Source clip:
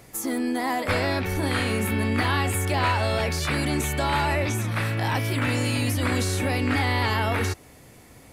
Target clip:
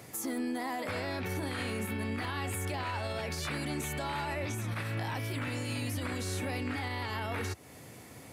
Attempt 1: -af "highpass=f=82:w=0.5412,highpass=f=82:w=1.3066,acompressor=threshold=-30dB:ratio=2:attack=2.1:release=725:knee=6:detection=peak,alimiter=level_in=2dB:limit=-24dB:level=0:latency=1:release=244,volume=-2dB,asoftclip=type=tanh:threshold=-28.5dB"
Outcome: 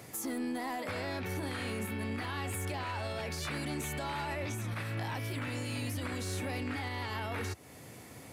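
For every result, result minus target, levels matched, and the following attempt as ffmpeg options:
compressor: peak gain reduction +8.5 dB; soft clip: distortion +10 dB
-af "highpass=f=82:w=0.5412,highpass=f=82:w=1.3066,alimiter=level_in=2dB:limit=-24dB:level=0:latency=1:release=244,volume=-2dB,asoftclip=type=tanh:threshold=-28.5dB"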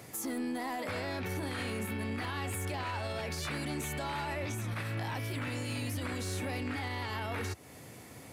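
soft clip: distortion +11 dB
-af "highpass=f=82:w=0.5412,highpass=f=82:w=1.3066,alimiter=level_in=2dB:limit=-24dB:level=0:latency=1:release=244,volume=-2dB,asoftclip=type=tanh:threshold=-22dB"

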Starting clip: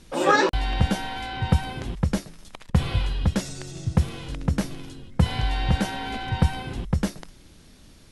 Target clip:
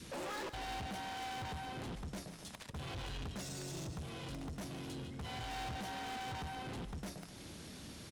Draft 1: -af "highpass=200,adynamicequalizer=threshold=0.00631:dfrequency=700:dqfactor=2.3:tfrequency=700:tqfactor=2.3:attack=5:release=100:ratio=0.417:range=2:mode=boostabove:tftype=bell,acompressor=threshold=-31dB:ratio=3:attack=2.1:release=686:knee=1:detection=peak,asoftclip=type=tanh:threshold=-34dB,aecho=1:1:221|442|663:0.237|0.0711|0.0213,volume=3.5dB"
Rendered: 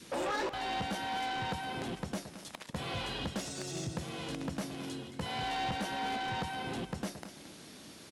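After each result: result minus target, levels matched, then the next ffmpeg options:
echo 72 ms late; soft clip: distortion -7 dB; 125 Hz band -4.0 dB
-af "highpass=200,adynamicequalizer=threshold=0.00631:dfrequency=700:dqfactor=2.3:tfrequency=700:tqfactor=2.3:attack=5:release=100:ratio=0.417:range=2:mode=boostabove:tftype=bell,acompressor=threshold=-31dB:ratio=3:attack=2.1:release=686:knee=1:detection=peak,asoftclip=type=tanh:threshold=-44.5dB,aecho=1:1:149|298|447:0.237|0.0711|0.0213,volume=3.5dB"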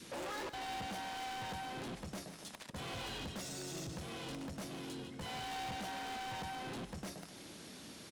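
125 Hz band -4.5 dB
-af "highpass=88,adynamicequalizer=threshold=0.00631:dfrequency=700:dqfactor=2.3:tfrequency=700:tqfactor=2.3:attack=5:release=100:ratio=0.417:range=2:mode=boostabove:tftype=bell,acompressor=threshold=-31dB:ratio=3:attack=2.1:release=686:knee=1:detection=peak,asoftclip=type=tanh:threshold=-44.5dB,aecho=1:1:149|298|447:0.237|0.0711|0.0213,volume=3.5dB"

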